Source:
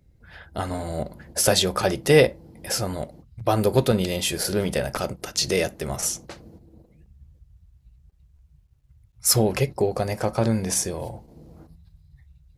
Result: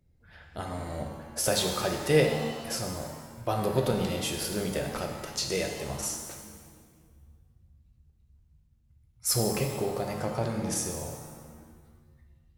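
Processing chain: shimmer reverb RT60 1.4 s, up +7 st, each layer -8 dB, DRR 3 dB; gain -8.5 dB

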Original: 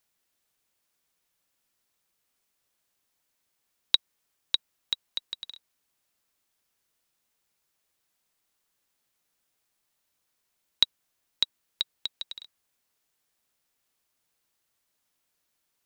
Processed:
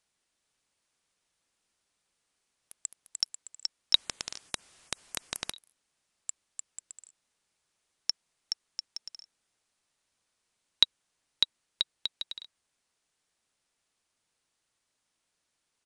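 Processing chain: echoes that change speed 0.44 s, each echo +6 st, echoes 3, each echo -6 dB; downsampling 22050 Hz; 3.95–5.52 spectral compressor 10:1

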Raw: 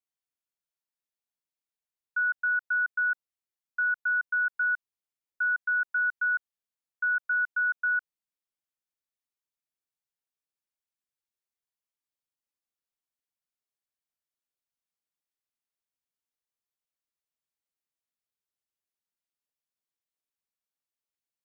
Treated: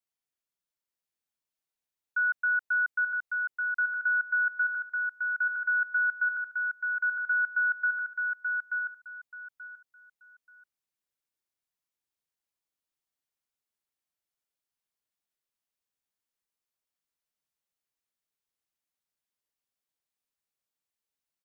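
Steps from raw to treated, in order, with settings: feedback echo 0.882 s, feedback 22%, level -4 dB

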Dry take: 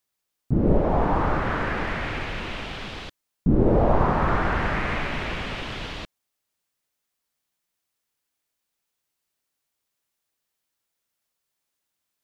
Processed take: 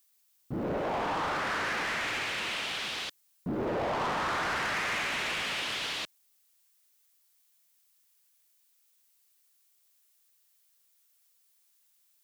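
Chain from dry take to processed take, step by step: HPF 110 Hz 6 dB/oct; tilt +3.5 dB/oct; soft clip -28 dBFS, distortion -9 dB

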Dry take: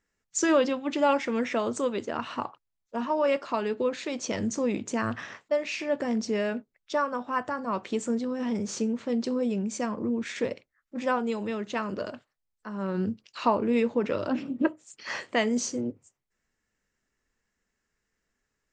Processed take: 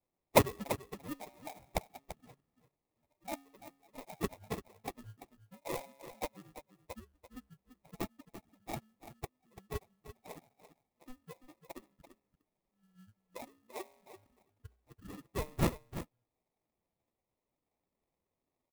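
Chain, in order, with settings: per-bin expansion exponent 3; elliptic band-stop 110–2300 Hz, stop band 50 dB; RIAA curve recording; de-hum 131.7 Hz, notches 23; dynamic EQ 3500 Hz, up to -6 dB, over -49 dBFS, Q 0.76; sample-and-hold 29×; echo 0.339 s -12 dB; clock jitter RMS 0.042 ms; gain +3.5 dB

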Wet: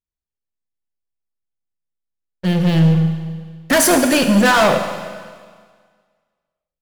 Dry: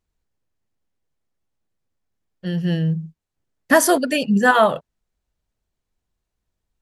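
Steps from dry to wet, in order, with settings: sample leveller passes 5; Schroeder reverb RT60 1.7 s, combs from 33 ms, DRR 6 dB; gain -7.5 dB

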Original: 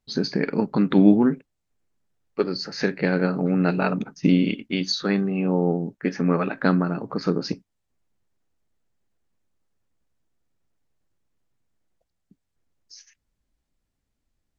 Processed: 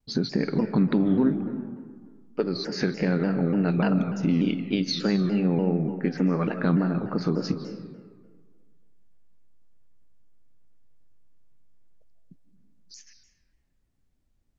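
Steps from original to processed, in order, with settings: low shelf 390 Hz +7.5 dB; limiter -7.5 dBFS, peak gain reduction 8.5 dB; compressor 1.5:1, threshold -26 dBFS, peak gain reduction 5.5 dB; on a send at -8.5 dB: reverb RT60 1.7 s, pre-delay 0.115 s; on the sum: shaped vibrato saw down 3.4 Hz, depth 160 cents; gain -1.5 dB

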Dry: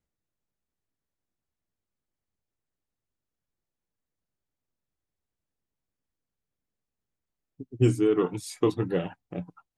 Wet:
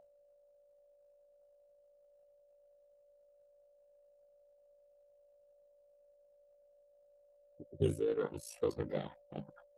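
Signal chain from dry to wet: whine 550 Hz -47 dBFS; ring modulator 27 Hz; formant shift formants +3 st; gain -7.5 dB

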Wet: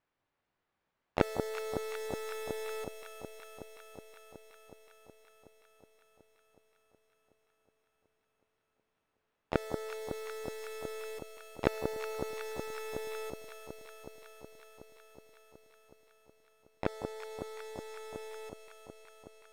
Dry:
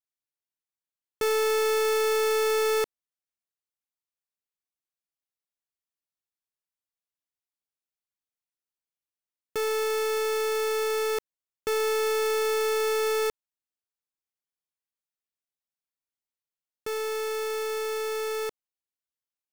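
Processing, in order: low-pass opened by the level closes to 1600 Hz, open at -28.5 dBFS; flipped gate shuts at -34 dBFS, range -36 dB; harmoniser +3 st -16 dB, +7 st -6 dB, +12 st -18 dB; echo with dull and thin repeats by turns 0.185 s, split 1100 Hz, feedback 87%, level -6.5 dB; gain +18 dB

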